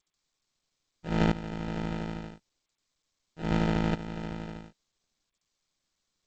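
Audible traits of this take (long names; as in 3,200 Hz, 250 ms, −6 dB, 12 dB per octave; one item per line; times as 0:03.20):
a buzz of ramps at a fixed pitch in blocks of 8 samples
tremolo saw up 0.76 Hz, depth 80%
aliases and images of a low sample rate 1,100 Hz, jitter 0%
G.722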